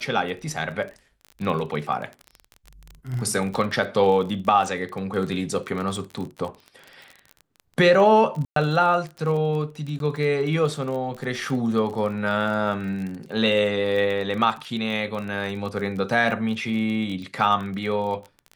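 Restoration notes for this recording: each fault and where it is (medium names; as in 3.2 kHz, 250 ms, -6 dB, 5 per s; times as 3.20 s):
crackle 30 per s -30 dBFS
8.45–8.56 s: dropout 113 ms
9.99–10.00 s: dropout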